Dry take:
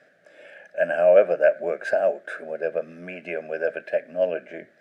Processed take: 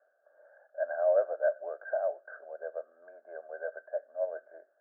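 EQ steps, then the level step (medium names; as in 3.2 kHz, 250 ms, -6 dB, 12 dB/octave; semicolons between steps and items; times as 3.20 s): ladder high-pass 570 Hz, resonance 45%; rippled Chebyshev low-pass 1.6 kHz, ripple 3 dB; -3.0 dB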